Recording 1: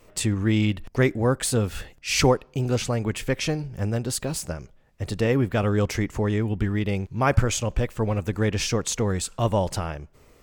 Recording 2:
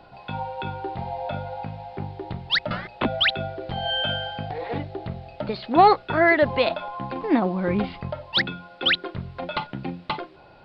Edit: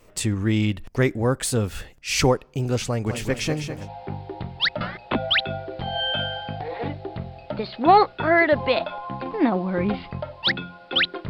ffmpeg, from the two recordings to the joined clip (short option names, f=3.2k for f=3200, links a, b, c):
-filter_complex "[0:a]asplit=3[a][b][c];[a]afade=t=out:st=3.06:d=0.02[d];[b]aecho=1:1:204|408|612|816|1020|1224|1428:0.398|0.223|0.125|0.0699|0.0392|0.0219|0.0123,afade=t=in:st=3.06:d=0.02,afade=t=out:st=3.9:d=0.02[e];[c]afade=t=in:st=3.9:d=0.02[f];[d][e][f]amix=inputs=3:normalize=0,apad=whole_dur=11.29,atrim=end=11.29,atrim=end=3.9,asetpts=PTS-STARTPTS[g];[1:a]atrim=start=1.6:end=9.19,asetpts=PTS-STARTPTS[h];[g][h]acrossfade=d=0.2:c1=tri:c2=tri"